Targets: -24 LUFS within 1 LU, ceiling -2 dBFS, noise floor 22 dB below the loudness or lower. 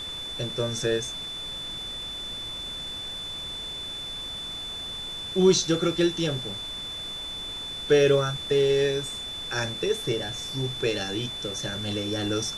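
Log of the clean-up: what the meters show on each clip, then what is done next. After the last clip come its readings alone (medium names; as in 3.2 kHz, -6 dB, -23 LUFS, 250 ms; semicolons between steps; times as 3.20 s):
steady tone 3.5 kHz; tone level -33 dBFS; noise floor -36 dBFS; noise floor target -50 dBFS; loudness -27.5 LUFS; peak level -8.0 dBFS; loudness target -24.0 LUFS
-> band-stop 3.5 kHz, Q 30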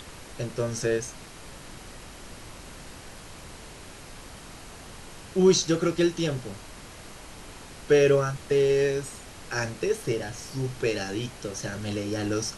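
steady tone not found; noise floor -45 dBFS; noise floor target -49 dBFS
-> noise print and reduce 6 dB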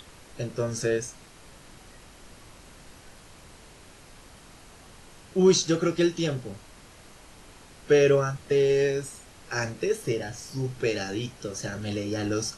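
noise floor -51 dBFS; loudness -26.5 LUFS; peak level -8.5 dBFS; loudness target -24.0 LUFS
-> trim +2.5 dB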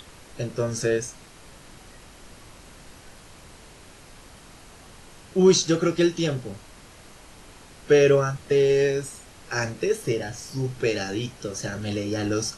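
loudness -24.0 LUFS; peak level -6.0 dBFS; noise floor -48 dBFS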